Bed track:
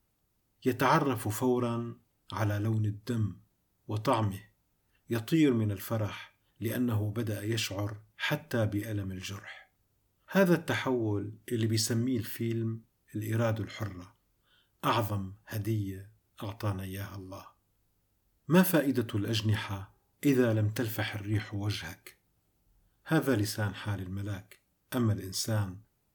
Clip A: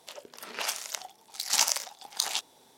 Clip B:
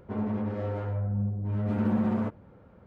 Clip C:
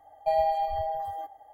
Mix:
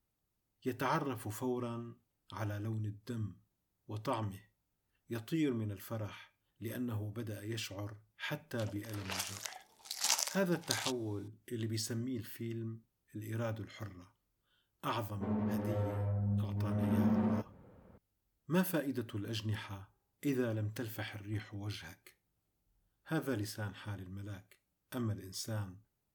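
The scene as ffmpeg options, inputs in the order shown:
-filter_complex "[0:a]volume=0.355[s0];[2:a]bandreject=f=1400:w=25[s1];[1:a]atrim=end=2.77,asetpts=PTS-STARTPTS,volume=0.422,afade=t=in:d=0.004:c=hsin,afade=t=out:st=2.766:d=0.004:c=hsin,adelay=8510[s2];[s1]atrim=end=2.86,asetpts=PTS-STARTPTS,volume=0.562,afade=t=in:d=0.004:c=hsin,afade=t=out:st=2.856:d=0.004:c=hsin,adelay=15120[s3];[s0][s2][s3]amix=inputs=3:normalize=0"

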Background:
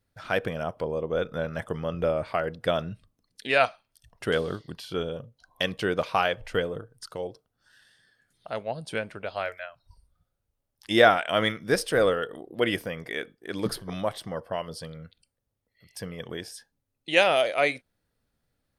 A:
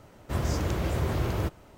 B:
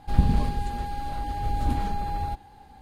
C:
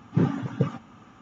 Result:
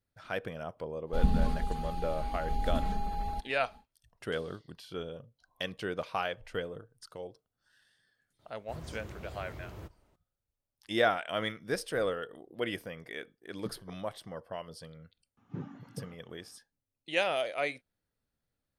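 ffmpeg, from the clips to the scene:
-filter_complex "[0:a]volume=0.355[s0];[2:a]aecho=1:1:4.6:0.95[s1];[3:a]highshelf=f=3900:g=-5[s2];[s1]atrim=end=2.81,asetpts=PTS-STARTPTS,volume=0.376,afade=t=in:d=0.1,afade=t=out:st=2.71:d=0.1,adelay=1050[s3];[1:a]atrim=end=1.77,asetpts=PTS-STARTPTS,volume=0.141,afade=t=in:d=0.004:c=hsin,afade=t=out:st=1.766:d=0.004:c=hsin,adelay=8390[s4];[s2]atrim=end=1.21,asetpts=PTS-STARTPTS,volume=0.126,afade=t=in:d=0.004:c=hsin,afade=t=out:st=1.206:d=0.004:c=hsin,adelay=15370[s5];[s0][s3][s4][s5]amix=inputs=4:normalize=0"

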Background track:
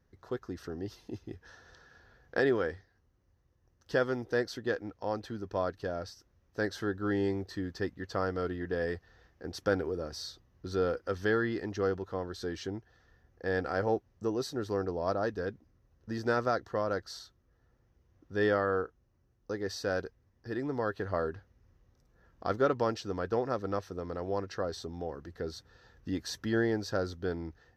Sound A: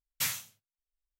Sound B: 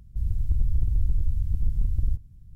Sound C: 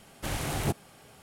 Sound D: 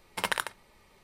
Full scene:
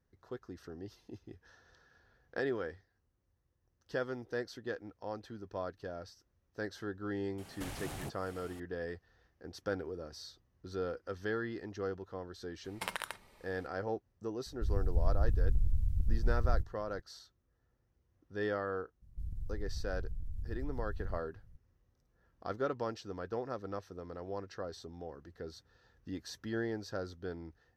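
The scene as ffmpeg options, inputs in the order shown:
-filter_complex "[2:a]asplit=2[s0][s1];[0:a]volume=0.422[s2];[3:a]acompressor=threshold=0.00631:ratio=3:attack=24:release=149:knee=1:detection=rms[s3];[4:a]acompressor=threshold=0.0282:ratio=6:attack=3.2:release=140:knee=1:detection=peak[s4];[s1]acompressor=threshold=0.0631:ratio=6:attack=3.2:release=140:knee=1:detection=peak[s5];[s3]atrim=end=1.22,asetpts=PTS-STARTPTS,volume=0.891,afade=t=in:d=0.004:c=hsin,afade=t=out:st=1.216:d=0.004:c=hsin,adelay=325458S[s6];[s4]atrim=end=1.03,asetpts=PTS-STARTPTS,volume=0.794,afade=t=in:d=0.004:c=hsin,afade=t=out:st=1.026:d=0.004:c=hsin,adelay=12640[s7];[s0]atrim=end=2.55,asetpts=PTS-STARTPTS,volume=0.501,afade=t=in:d=0.004:c=hsin,afade=t=out:st=2.546:d=0.004:c=hsin,adelay=14460[s8];[s5]atrim=end=2.55,asetpts=PTS-STARTPTS,volume=0.299,afade=t=in:d=0.004:c=hsin,afade=t=out:st=2.546:d=0.004:c=hsin,adelay=19020[s9];[s2][s6][s7][s8][s9]amix=inputs=5:normalize=0"

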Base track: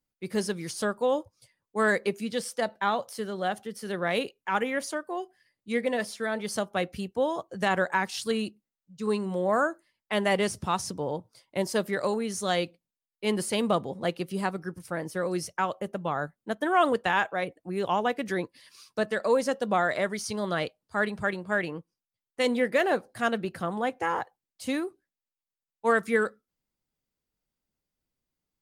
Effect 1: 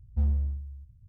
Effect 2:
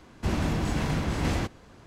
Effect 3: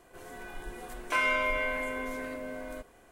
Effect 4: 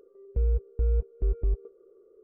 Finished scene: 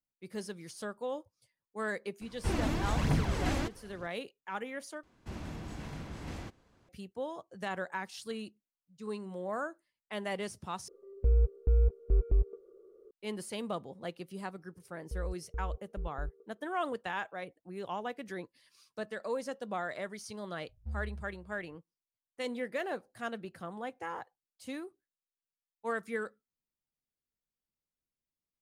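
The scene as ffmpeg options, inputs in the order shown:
-filter_complex "[2:a]asplit=2[s0][s1];[4:a]asplit=2[s2][s3];[0:a]volume=0.266[s4];[s0]aphaser=in_gain=1:out_gain=1:delay=3.8:decay=0.5:speed=1.1:type=triangular[s5];[s4]asplit=3[s6][s7][s8];[s6]atrim=end=5.034[s9];[s1]atrim=end=1.86,asetpts=PTS-STARTPTS,volume=0.178[s10];[s7]atrim=start=6.886:end=10.884[s11];[s2]atrim=end=2.23,asetpts=PTS-STARTPTS,volume=0.944[s12];[s8]atrim=start=13.106[s13];[s5]atrim=end=1.86,asetpts=PTS-STARTPTS,volume=0.562,afade=t=in:d=0.004:c=hsin,afade=t=out:st=1.856:d=0.004:c=hsin,adelay=2210[s14];[s3]atrim=end=2.23,asetpts=PTS-STARTPTS,volume=0.224,afade=t=in:d=0.004:c=hsin,afade=t=out:st=2.226:d=0.004:c=hsin,adelay=14750[s15];[1:a]atrim=end=1.08,asetpts=PTS-STARTPTS,volume=0.211,afade=t=in:d=0.004:c=hsin,afade=t=out:st=1.076:d=0.004:c=hsin,adelay=20690[s16];[s9][s10]acrossfade=d=0.004:c1=hsin:c2=hsin[s17];[s17][s11]acrossfade=d=0.004:c1=hsin:c2=hsin[s18];[s18][s12]acrossfade=d=0.004:c1=hsin:c2=hsin[s19];[s19][s13]acrossfade=d=0.004:c1=hsin:c2=hsin[s20];[s20][s14][s15][s16]amix=inputs=4:normalize=0"

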